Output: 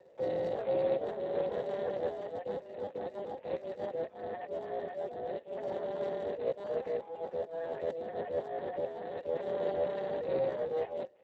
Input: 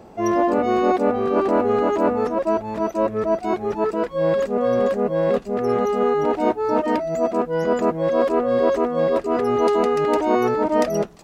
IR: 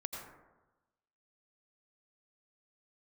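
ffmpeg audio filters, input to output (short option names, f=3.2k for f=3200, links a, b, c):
-filter_complex "[0:a]highpass=f=220:t=q:w=0.5412,highpass=f=220:t=q:w=1.307,lowpass=f=3.1k:t=q:w=0.5176,lowpass=f=3.1k:t=q:w=0.7071,lowpass=f=3.1k:t=q:w=1.932,afreqshift=170,asplit=3[a][b][c];[a]bandpass=f=530:t=q:w=8,volume=0dB[d];[b]bandpass=f=1.84k:t=q:w=8,volume=-6dB[e];[c]bandpass=f=2.48k:t=q:w=8,volume=-9dB[f];[d][e][f]amix=inputs=3:normalize=0,volume=-2dB" -ar 32000 -c:a libspeex -b:a 8k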